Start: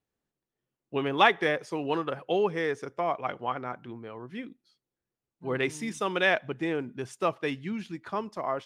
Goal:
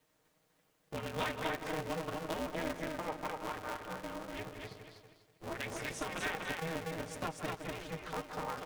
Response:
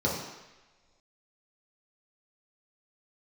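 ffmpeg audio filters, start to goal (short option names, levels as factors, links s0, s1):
-filter_complex "[0:a]aecho=1:1:6.5:0.94,asplit=2[s0][s1];[s1]adelay=162,lowpass=f=2000:p=1,volume=0.237,asplit=2[s2][s3];[s3]adelay=162,lowpass=f=2000:p=1,volume=0.3,asplit=2[s4][s5];[s5]adelay=162,lowpass=f=2000:p=1,volume=0.3[s6];[s2][s4][s6]amix=inputs=3:normalize=0[s7];[s0][s7]amix=inputs=2:normalize=0,acompressor=threshold=0.00126:ratio=3,highpass=f=240:w=0.5412,highpass=f=240:w=1.3066,asplit=2[s8][s9];[s9]aecho=0:1:244|488|732|976:0.708|0.227|0.0725|0.0232[s10];[s8][s10]amix=inputs=2:normalize=0,aeval=exprs='val(0)*sgn(sin(2*PI*160*n/s))':c=same,volume=3.55"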